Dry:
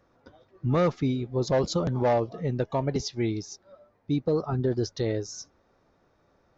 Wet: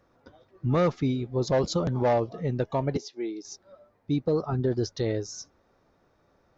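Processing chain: 2.97–3.45 s: ladder high-pass 270 Hz, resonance 40%

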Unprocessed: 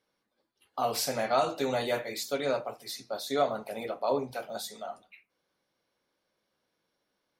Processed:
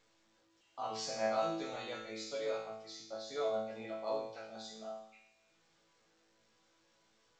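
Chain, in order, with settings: chord resonator A2 fifth, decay 0.73 s; trim +8.5 dB; A-law 128 kbps 16 kHz

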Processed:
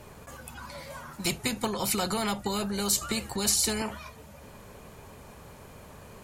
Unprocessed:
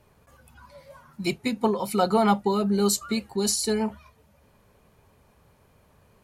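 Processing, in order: 1.25–3.82 s: tone controls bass +10 dB, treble +2 dB; compression 4:1, threshold -20 dBFS, peak gain reduction 7.5 dB; peaking EQ 7.3 kHz +5 dB 0.37 oct; spectrum-flattening compressor 2:1

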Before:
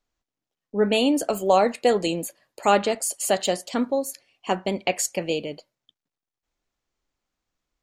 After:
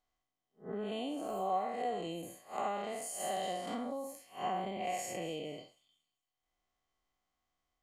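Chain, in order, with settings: spectral blur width 169 ms; dynamic bell 4.9 kHz, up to -5 dB, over -50 dBFS, Q 1; compression 5:1, threshold -34 dBFS, peak gain reduction 15 dB; small resonant body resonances 740/1100/2000/3100 Hz, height 13 dB, ringing for 45 ms; on a send: feedback echo behind a high-pass 231 ms, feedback 34%, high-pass 4.4 kHz, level -16.5 dB; on the sum: trim -4 dB

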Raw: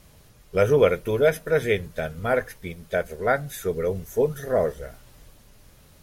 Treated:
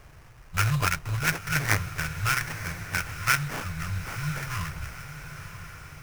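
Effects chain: brick-wall FIR band-stop 170–1000 Hz; sample-rate reducer 3.9 kHz, jitter 20%; echo that smears into a reverb 974 ms, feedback 53%, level -11.5 dB; trim +3.5 dB

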